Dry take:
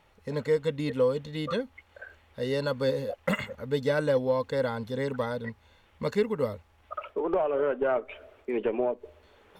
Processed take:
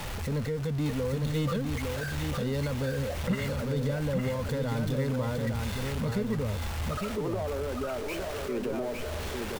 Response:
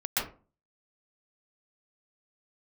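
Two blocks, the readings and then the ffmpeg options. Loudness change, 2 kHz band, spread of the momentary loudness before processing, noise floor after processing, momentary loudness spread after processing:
-2.0 dB, -0.5 dB, 15 LU, -35 dBFS, 4 LU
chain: -filter_complex "[0:a]aeval=exprs='val(0)+0.5*0.0355*sgn(val(0))':c=same,acrossover=split=200[s0][s1];[s0]acontrast=90[s2];[s1]alimiter=limit=0.0708:level=0:latency=1:release=163[s3];[s2][s3]amix=inputs=2:normalize=0,aecho=1:1:857:0.596,volume=0.631"

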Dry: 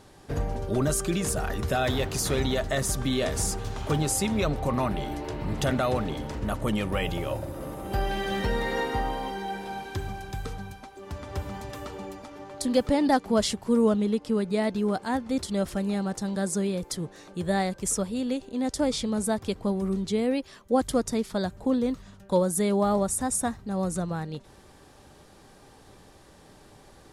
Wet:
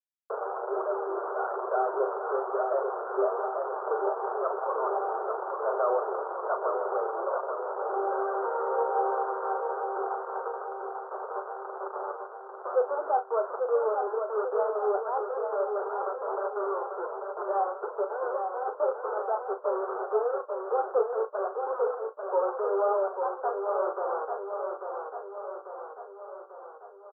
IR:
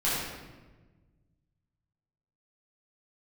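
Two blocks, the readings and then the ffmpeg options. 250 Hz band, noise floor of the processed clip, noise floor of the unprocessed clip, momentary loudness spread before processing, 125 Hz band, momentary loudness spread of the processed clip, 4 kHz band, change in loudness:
under -15 dB, -46 dBFS, -53 dBFS, 12 LU, under -40 dB, 10 LU, under -40 dB, -2.5 dB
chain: -filter_complex "[0:a]asplit=2[s0][s1];[s1]acompressor=threshold=0.0158:ratio=12,volume=1[s2];[s0][s2]amix=inputs=2:normalize=0,acrossover=split=730[s3][s4];[s3]aeval=exprs='val(0)*(1-0.5/2+0.5/2*cos(2*PI*1*n/s))':c=same[s5];[s4]aeval=exprs='val(0)*(1-0.5/2-0.5/2*cos(2*PI*1*n/s))':c=same[s6];[s5][s6]amix=inputs=2:normalize=0,aresample=8000,acrusher=bits=4:mix=0:aa=0.000001,aresample=44100,flanger=delay=5.1:depth=5.5:regen=38:speed=1.1:shape=triangular,asoftclip=type=tanh:threshold=0.0668,asuperpass=centerf=740:order=20:qfactor=0.71,asplit=2[s7][s8];[s8]adelay=38,volume=0.335[s9];[s7][s9]amix=inputs=2:normalize=0,aecho=1:1:843|1686|2529|3372|4215|5058|5901|6744:0.531|0.303|0.172|0.0983|0.056|0.0319|0.0182|0.0104,volume=2"

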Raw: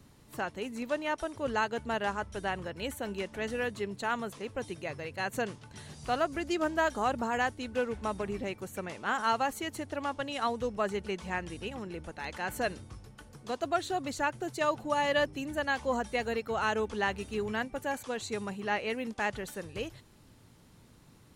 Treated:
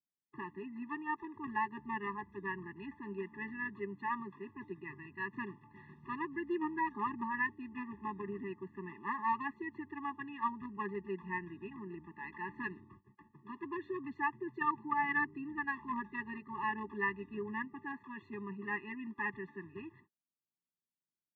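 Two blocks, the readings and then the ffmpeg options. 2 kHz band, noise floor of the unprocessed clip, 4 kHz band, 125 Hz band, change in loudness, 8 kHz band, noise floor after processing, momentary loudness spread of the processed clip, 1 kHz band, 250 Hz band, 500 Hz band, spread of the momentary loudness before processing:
-4.0 dB, -58 dBFS, under -20 dB, -8.0 dB, -6.0 dB, under -35 dB, under -85 dBFS, 12 LU, -5.0 dB, -4.5 dB, -12.5 dB, 10 LU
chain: -filter_complex "[0:a]asplit=2[s0][s1];[s1]acrusher=bits=3:mix=0:aa=0.000001,volume=0.266[s2];[s0][s2]amix=inputs=2:normalize=0,highpass=170,equalizer=f=180:t=q:w=4:g=4,equalizer=f=460:t=q:w=4:g=9,equalizer=f=670:t=q:w=4:g=7,equalizer=f=1400:t=q:w=4:g=8,equalizer=f=2000:t=q:w=4:g=4,lowpass=f=2200:w=0.5412,lowpass=f=2200:w=1.3066,agate=range=0.00891:threshold=0.00282:ratio=16:detection=peak,afftfilt=real='re*eq(mod(floor(b*sr/1024/410),2),0)':imag='im*eq(mod(floor(b*sr/1024/410),2),0)':win_size=1024:overlap=0.75,volume=0.531"

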